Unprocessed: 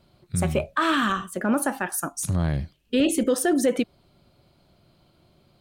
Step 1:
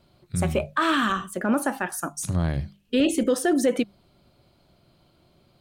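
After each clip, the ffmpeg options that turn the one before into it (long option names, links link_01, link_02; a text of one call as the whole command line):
ffmpeg -i in.wav -filter_complex "[0:a]bandreject=frequency=50:width_type=h:width=6,bandreject=frequency=100:width_type=h:width=6,bandreject=frequency=150:width_type=h:width=6,bandreject=frequency=200:width_type=h:width=6,acrossover=split=7500[link_01][link_02];[link_02]alimiter=level_in=2.5dB:limit=-24dB:level=0:latency=1,volume=-2.5dB[link_03];[link_01][link_03]amix=inputs=2:normalize=0" out.wav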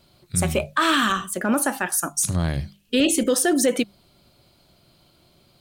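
ffmpeg -i in.wav -af "highshelf=frequency=2900:gain=10,volume=1dB" out.wav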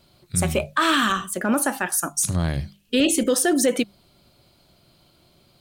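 ffmpeg -i in.wav -af anull out.wav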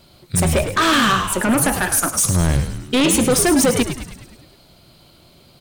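ffmpeg -i in.wav -filter_complex "[0:a]aeval=exprs='0.376*(cos(1*acos(clip(val(0)/0.376,-1,1)))-cos(1*PI/2))+0.106*(cos(5*acos(clip(val(0)/0.376,-1,1)))-cos(5*PI/2))':channel_layout=same,asplit=2[link_01][link_02];[link_02]asplit=7[link_03][link_04][link_05][link_06][link_07][link_08][link_09];[link_03]adelay=104,afreqshift=-92,volume=-9dB[link_10];[link_04]adelay=208,afreqshift=-184,volume=-14dB[link_11];[link_05]adelay=312,afreqshift=-276,volume=-19.1dB[link_12];[link_06]adelay=416,afreqshift=-368,volume=-24.1dB[link_13];[link_07]adelay=520,afreqshift=-460,volume=-29.1dB[link_14];[link_08]adelay=624,afreqshift=-552,volume=-34.2dB[link_15];[link_09]adelay=728,afreqshift=-644,volume=-39.2dB[link_16];[link_10][link_11][link_12][link_13][link_14][link_15][link_16]amix=inputs=7:normalize=0[link_17];[link_01][link_17]amix=inputs=2:normalize=0" out.wav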